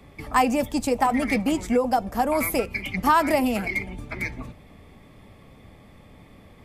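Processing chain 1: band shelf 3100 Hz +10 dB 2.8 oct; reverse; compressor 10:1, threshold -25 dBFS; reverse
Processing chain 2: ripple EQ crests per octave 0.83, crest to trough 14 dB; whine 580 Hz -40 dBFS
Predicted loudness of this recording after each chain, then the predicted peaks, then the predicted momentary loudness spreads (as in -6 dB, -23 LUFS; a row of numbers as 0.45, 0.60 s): -29.0, -21.0 LUFS; -15.0, -4.5 dBFS; 19, 10 LU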